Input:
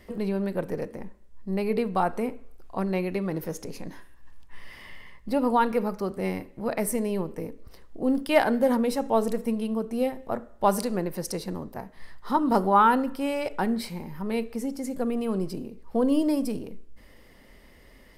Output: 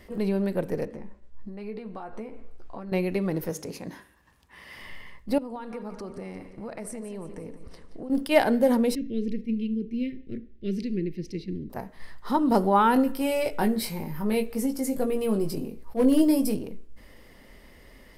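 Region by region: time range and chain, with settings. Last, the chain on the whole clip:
0.85–2.92 s: compression 12:1, threshold -36 dBFS + distance through air 69 m + doubling 14 ms -6.5 dB
3.50–4.79 s: high-pass 80 Hz + hum notches 50/100/150/200/250/300/350/400 Hz
5.38–8.10 s: Chebyshev low-pass 9.4 kHz, order 3 + compression, threshold -36 dBFS + feedback delay 175 ms, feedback 51%, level -12.5 dB
8.95–11.70 s: elliptic band-stop 370–2200 Hz, stop band 60 dB + distance through air 250 m
12.94–16.55 s: hard clipper -15.5 dBFS + peaking EQ 13 kHz +8 dB 0.78 oct + doubling 19 ms -5 dB
whole clip: dynamic bell 1.2 kHz, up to -6 dB, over -41 dBFS, Q 1.4; attacks held to a fixed rise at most 350 dB/s; trim +2 dB

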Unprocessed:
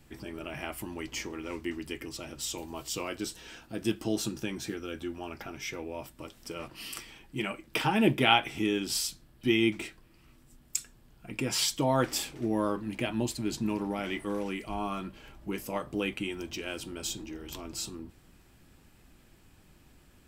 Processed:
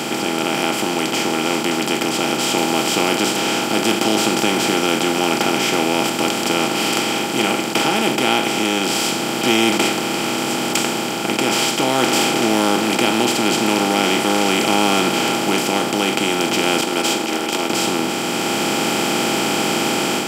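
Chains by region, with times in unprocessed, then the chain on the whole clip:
16.81–17.70 s: high-pass 330 Hz 24 dB/octave + expander -38 dBFS
whole clip: spectral levelling over time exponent 0.2; high-pass 190 Hz 12 dB/octave; level rider gain up to 5.5 dB

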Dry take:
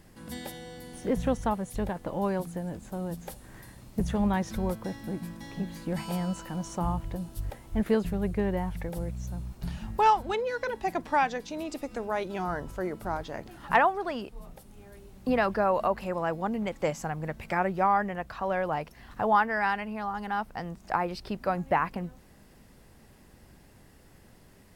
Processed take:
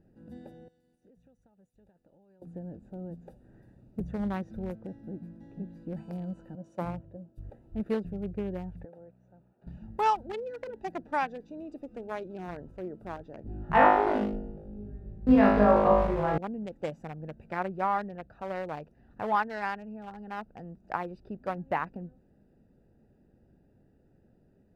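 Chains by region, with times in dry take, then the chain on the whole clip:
0.68–2.42 s: median filter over 3 samples + pre-emphasis filter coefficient 0.9 + compression 12:1, threshold -50 dBFS
6.55–7.38 s: high-pass 86 Hz + peaking EQ 560 Hz +9 dB 0.28 oct + three bands expanded up and down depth 100%
8.85–9.67 s: high-pass 140 Hz + three-band isolator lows -14 dB, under 490 Hz, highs -15 dB, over 2.7 kHz
13.43–16.38 s: RIAA curve playback + flutter echo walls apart 3.3 m, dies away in 0.99 s
whole clip: local Wiener filter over 41 samples; bass shelf 100 Hz -9 dB; trim -3 dB

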